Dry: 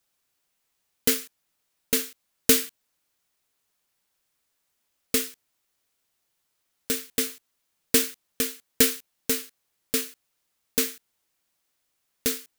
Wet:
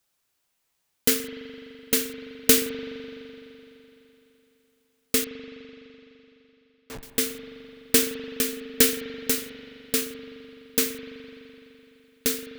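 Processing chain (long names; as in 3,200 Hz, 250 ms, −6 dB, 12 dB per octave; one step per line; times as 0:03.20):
0:05.24–0:07.03: comparator with hysteresis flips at −24 dBFS
spring reverb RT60 3.4 s, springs 42 ms, chirp 55 ms, DRR 8 dB
level +1 dB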